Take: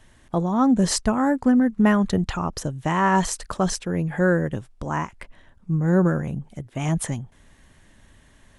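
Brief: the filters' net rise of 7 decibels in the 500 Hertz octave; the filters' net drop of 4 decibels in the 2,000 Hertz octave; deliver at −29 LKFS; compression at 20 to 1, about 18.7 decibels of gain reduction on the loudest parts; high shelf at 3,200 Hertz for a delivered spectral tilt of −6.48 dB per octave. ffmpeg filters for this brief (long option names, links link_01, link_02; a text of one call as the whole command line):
ffmpeg -i in.wav -af "equalizer=frequency=500:width_type=o:gain=9,equalizer=frequency=2000:width_type=o:gain=-4.5,highshelf=frequency=3200:gain=-5.5,acompressor=threshold=-29dB:ratio=20,volume=6dB" out.wav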